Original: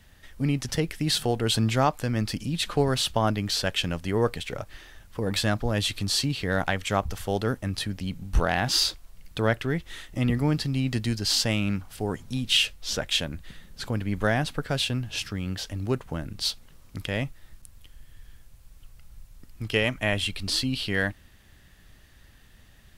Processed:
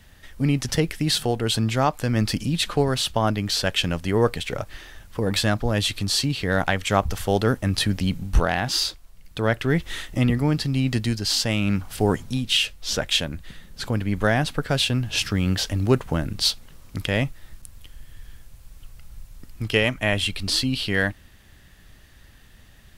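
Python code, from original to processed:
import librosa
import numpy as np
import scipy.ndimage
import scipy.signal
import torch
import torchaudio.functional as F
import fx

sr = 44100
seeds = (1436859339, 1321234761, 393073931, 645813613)

y = fx.rider(x, sr, range_db=10, speed_s=0.5)
y = y * librosa.db_to_amplitude(4.0)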